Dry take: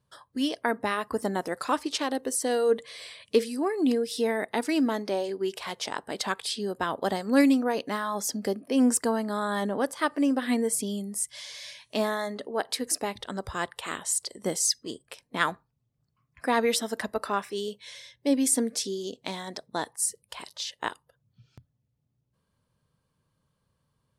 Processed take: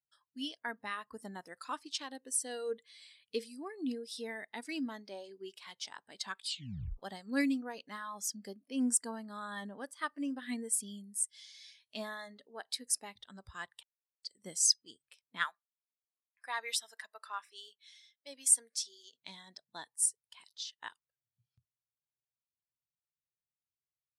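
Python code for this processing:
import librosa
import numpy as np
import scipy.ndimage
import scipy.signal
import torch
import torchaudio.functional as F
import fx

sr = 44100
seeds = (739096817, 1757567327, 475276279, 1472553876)

y = fx.highpass(x, sr, hz=640.0, slope=12, at=(15.44, 19.14))
y = fx.edit(y, sr, fx.tape_stop(start_s=6.47, length_s=0.5),
    fx.silence(start_s=13.83, length_s=0.4), tone=tone)
y = fx.tone_stack(y, sr, knobs='5-5-5')
y = fx.spectral_expand(y, sr, expansion=1.5)
y = y * 10.0 ** (6.0 / 20.0)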